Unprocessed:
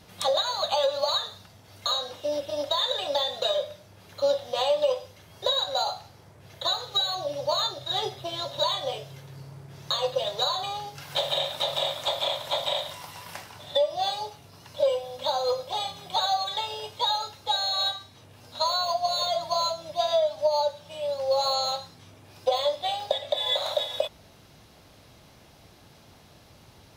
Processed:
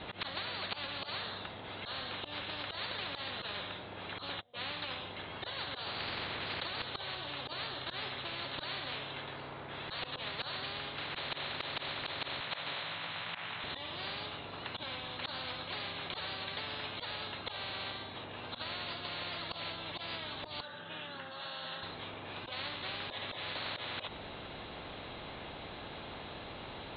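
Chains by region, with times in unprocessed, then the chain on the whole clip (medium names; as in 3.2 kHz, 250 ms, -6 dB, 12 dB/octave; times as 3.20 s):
4.29–4.71 s: low-pass 3.8 kHz 24 dB/octave + gate -35 dBFS, range -38 dB
5.85–6.82 s: distance through air 110 m + level flattener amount 100%
12.40–13.64 s: Chebyshev band-pass 160–2900 Hz + resonant low shelf 780 Hz -10.5 dB, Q 1.5 + doubling 18 ms -2 dB
20.60–21.83 s: compression 3:1, threshold -28 dBFS + cabinet simulation 280–2900 Hz, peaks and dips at 310 Hz -5 dB, 450 Hz -4 dB, 710 Hz -9 dB, 1 kHz -9 dB, 1.6 kHz +7 dB, 2.3 kHz -10 dB
whole clip: steep low-pass 4 kHz 96 dB/octave; slow attack 134 ms; spectrum-flattening compressor 10:1; trim -8 dB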